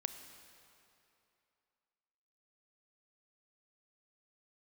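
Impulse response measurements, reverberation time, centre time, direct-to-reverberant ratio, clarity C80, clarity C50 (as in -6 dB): 2.8 s, 30 ms, 8.5 dB, 9.5 dB, 9.0 dB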